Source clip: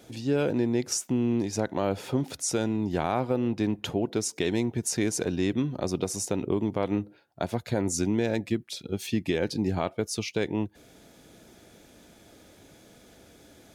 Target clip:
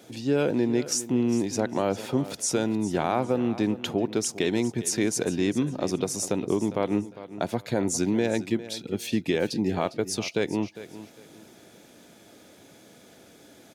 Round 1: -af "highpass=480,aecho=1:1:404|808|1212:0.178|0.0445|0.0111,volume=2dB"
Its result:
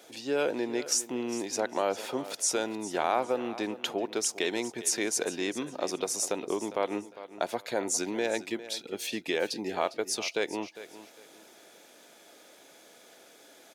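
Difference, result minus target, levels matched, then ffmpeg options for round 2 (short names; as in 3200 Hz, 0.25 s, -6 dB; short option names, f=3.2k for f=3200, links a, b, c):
125 Hz band -14.0 dB
-af "highpass=130,aecho=1:1:404|808|1212:0.178|0.0445|0.0111,volume=2dB"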